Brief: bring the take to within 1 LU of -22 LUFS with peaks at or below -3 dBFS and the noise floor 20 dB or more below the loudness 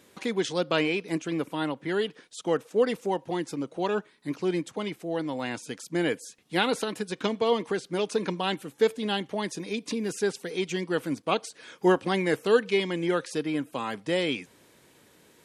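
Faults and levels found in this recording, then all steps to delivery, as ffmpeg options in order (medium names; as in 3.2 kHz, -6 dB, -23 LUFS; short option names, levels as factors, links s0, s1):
loudness -29.0 LUFS; peak level -9.0 dBFS; loudness target -22.0 LUFS
-> -af "volume=2.24,alimiter=limit=0.708:level=0:latency=1"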